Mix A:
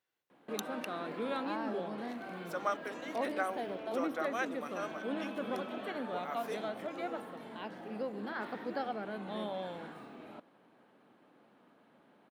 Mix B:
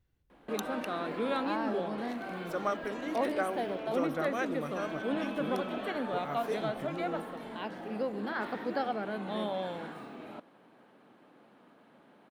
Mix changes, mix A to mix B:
speech: remove high-pass 580 Hz 12 dB/octave; background +4.5 dB

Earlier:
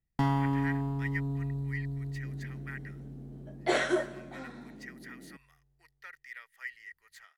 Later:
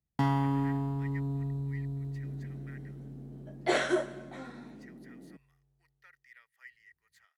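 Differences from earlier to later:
speech -11.0 dB; master: add high-pass 57 Hz

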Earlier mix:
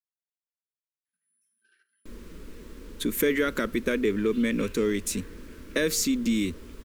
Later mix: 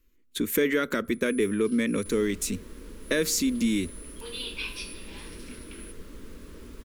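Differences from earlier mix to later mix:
speech: entry -2.65 s; first sound: remove band-pass filter 1.6 kHz, Q 3.9

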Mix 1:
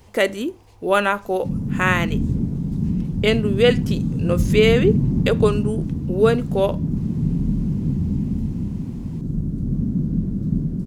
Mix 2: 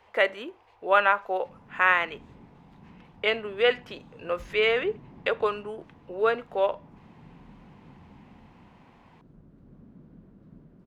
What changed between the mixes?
background -9.5 dB; master: add three-band isolator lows -22 dB, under 540 Hz, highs -24 dB, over 3.1 kHz

